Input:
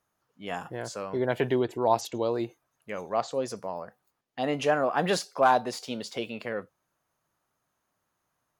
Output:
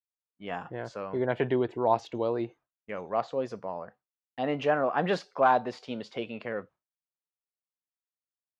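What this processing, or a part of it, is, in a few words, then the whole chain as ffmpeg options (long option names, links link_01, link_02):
hearing-loss simulation: -af "lowpass=2900,agate=range=-33dB:threshold=-47dB:ratio=3:detection=peak,volume=-1dB"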